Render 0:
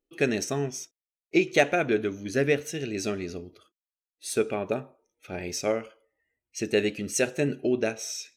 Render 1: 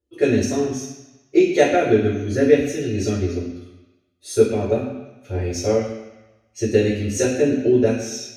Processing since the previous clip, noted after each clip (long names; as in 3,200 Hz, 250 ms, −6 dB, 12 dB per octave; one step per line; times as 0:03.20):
parametric band 9,400 Hz +11 dB 1.7 octaves
convolution reverb RT60 1.0 s, pre-delay 3 ms, DRR −7.5 dB
level −15.5 dB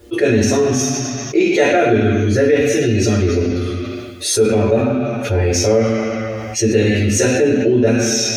parametric band 1,500 Hz +4 dB 2.6 octaves
flanger 1 Hz, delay 8.3 ms, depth 1.1 ms, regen +38%
envelope flattener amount 70%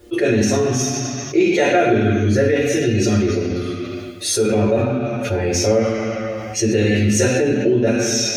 rectangular room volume 1,900 cubic metres, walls furnished, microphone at 0.89 metres
level −2.5 dB